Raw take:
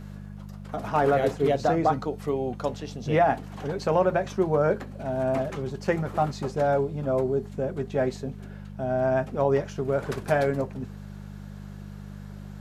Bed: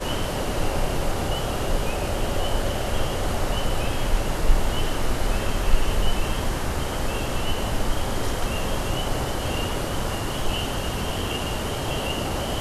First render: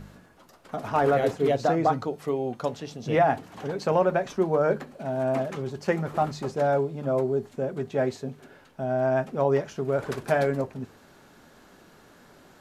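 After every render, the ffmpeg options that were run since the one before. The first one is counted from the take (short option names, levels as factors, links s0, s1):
-af "bandreject=f=50:t=h:w=4,bandreject=f=100:t=h:w=4,bandreject=f=150:t=h:w=4,bandreject=f=200:t=h:w=4"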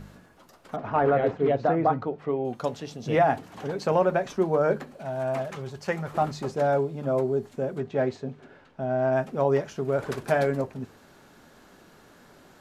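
-filter_complex "[0:a]asettb=1/sr,asplit=3[s0][s1][s2];[s0]atrim=end=0.764[s3];[s1]atrim=start=0.76:end=2.45,asetpts=PTS-STARTPTS,afade=t=in:d=0.004:c=qsin,afade=t=out:st=1.686:d=0.004:c=qsin,lowpass=2300[s4];[s2]atrim=start=2.446[s5];[s3][s4]acrossfade=d=0.004:c1=hsin:c2=qsin[s6];[s6][s5]acrossfade=d=0.004:c1=qsin:c2=hsin,asettb=1/sr,asplit=3[s7][s8][s9];[s7]atrim=end=4.994[s10];[s8]atrim=start=4.99:end=6.15,asetpts=PTS-STARTPTS,afade=t=in:d=0.004:c=qsin,afade=t=out:st=1.156:d=0.004:c=qsin,equalizer=f=290:t=o:w=1.3:g=-8.5[s11];[s9]atrim=start=6.146[s12];[s10][s11]acrossfade=d=0.004:c1=hsin:c2=qsin[s13];[s13][s12]acrossfade=d=0.004:c1=qsin:c2=hsin,asettb=1/sr,asplit=3[s14][s15][s16];[s14]atrim=end=7.804[s17];[s15]atrim=start=7.8:end=9.13,asetpts=PTS-STARTPTS,afade=t=in:d=0.004:c=qsin,afade=t=out:st=1.326:d=0.004:c=qsin,adynamicsmooth=sensitivity=3:basefreq=5000[s18];[s16]atrim=start=9.126[s19];[s17][s18]acrossfade=d=0.004:c1=hsin:c2=qsin[s20];[s20][s19]acrossfade=d=0.004:c1=qsin:c2=hsin"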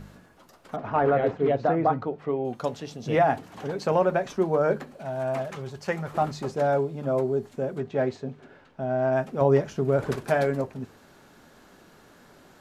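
-filter_complex "[0:a]asettb=1/sr,asplit=3[s0][s1][s2];[s0]atrim=end=9.414[s3];[s1]atrim=start=9.41:end=10.16,asetpts=PTS-STARTPTS,afade=t=in:d=0.004:c=qsin,afade=t=out:st=0.746:d=0.004:c=qsin,lowshelf=f=370:g=6.5[s4];[s2]atrim=start=10.156[s5];[s3][s4]acrossfade=d=0.004:c1=hsin:c2=qsin[s6];[s6][s5]acrossfade=d=0.004:c1=qsin:c2=hsin"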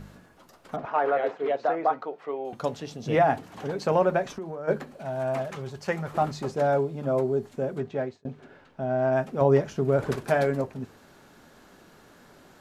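-filter_complex "[0:a]asettb=1/sr,asplit=3[s0][s1][s2];[s0]atrim=end=0.854[s3];[s1]atrim=start=0.85:end=2.53,asetpts=PTS-STARTPTS,afade=t=in:d=0.004:c=qsin,afade=t=out:st=1.676:d=0.004:c=qsin,highpass=490[s4];[s2]atrim=start=2.526[s5];[s3][s4]acrossfade=d=0.004:c1=hsin:c2=qsin[s6];[s6][s5]acrossfade=d=0.004:c1=qsin:c2=hsin,asplit=3[s7][s8][s9];[s7]afade=t=out:st=4.26:d=0.02[s10];[s8]acompressor=threshold=0.0282:ratio=12:attack=3.2:release=140:knee=1:detection=peak,afade=t=in:st=4.26:d=0.02,afade=t=out:st=4.67:d=0.02[s11];[s9]afade=t=in:st=4.67:d=0.02[s12];[s10][s11][s12]amix=inputs=3:normalize=0,asplit=2[s13][s14];[s13]atrim=end=8.25,asetpts=PTS-STARTPTS,afade=t=out:st=7.85:d=0.4[s15];[s14]atrim=start=8.25,asetpts=PTS-STARTPTS,afade=t=in:d=0.004:c=hsin[s16];[s15][s16]concat=n=2:v=0:a=1"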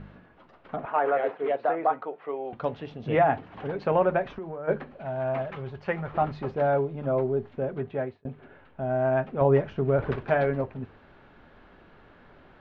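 -af "lowpass=f=3100:w=0.5412,lowpass=f=3100:w=1.3066,asubboost=boost=2.5:cutoff=97"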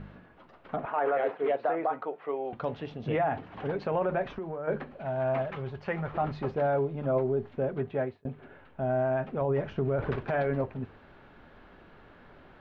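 -af "alimiter=limit=0.106:level=0:latency=1:release=36"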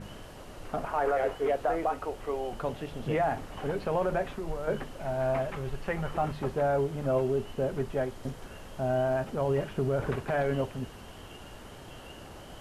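-filter_complex "[1:a]volume=0.0944[s0];[0:a][s0]amix=inputs=2:normalize=0"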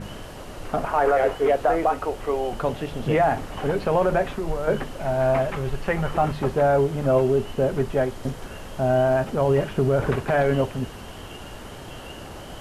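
-af "volume=2.51"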